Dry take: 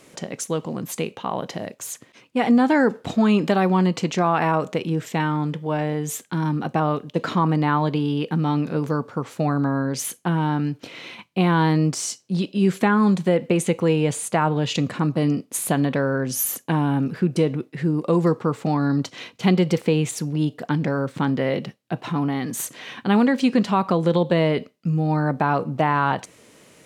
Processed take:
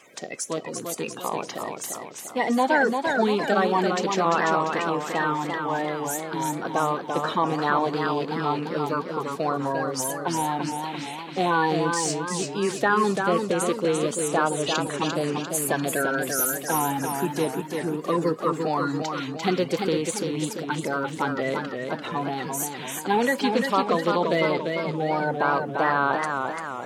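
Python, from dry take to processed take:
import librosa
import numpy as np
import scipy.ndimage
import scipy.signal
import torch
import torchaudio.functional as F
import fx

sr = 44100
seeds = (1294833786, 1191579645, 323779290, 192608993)

y = fx.spec_quant(x, sr, step_db=30)
y = fx.highpass(y, sr, hz=510.0, slope=6)
y = fx.echo_warbled(y, sr, ms=343, feedback_pct=52, rate_hz=2.8, cents=103, wet_db=-5.0)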